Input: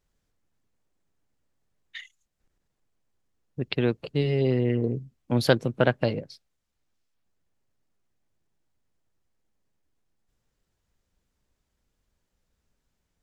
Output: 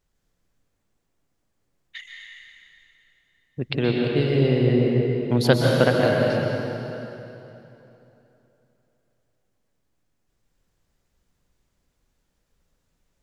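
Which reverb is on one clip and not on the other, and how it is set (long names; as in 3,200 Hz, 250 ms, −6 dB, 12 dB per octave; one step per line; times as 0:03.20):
dense smooth reverb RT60 3.2 s, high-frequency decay 0.8×, pre-delay 110 ms, DRR −1.5 dB
level +1.5 dB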